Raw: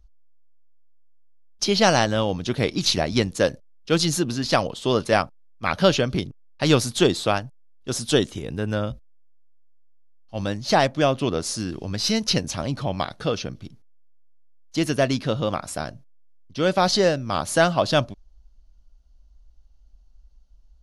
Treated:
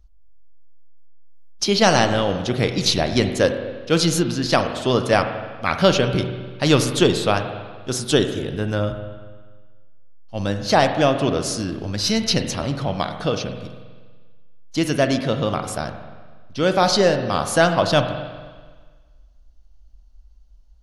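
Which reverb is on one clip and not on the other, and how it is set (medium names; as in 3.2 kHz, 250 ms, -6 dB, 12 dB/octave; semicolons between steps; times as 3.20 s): spring tank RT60 1.5 s, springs 40/48 ms, chirp 55 ms, DRR 7 dB; trim +2 dB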